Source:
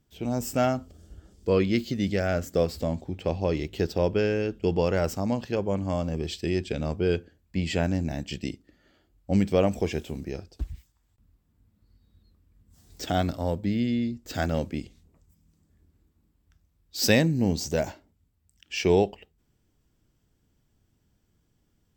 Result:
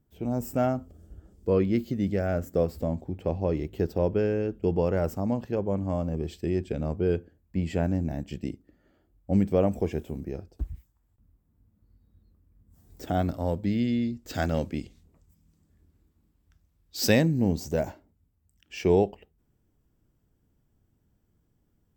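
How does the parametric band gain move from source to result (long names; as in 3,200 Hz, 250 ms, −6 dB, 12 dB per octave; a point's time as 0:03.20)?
parametric band 4,300 Hz 2.5 octaves
0:13.07 −13.5 dB
0:13.68 −2 dB
0:16.97 −2 dB
0:17.51 −10 dB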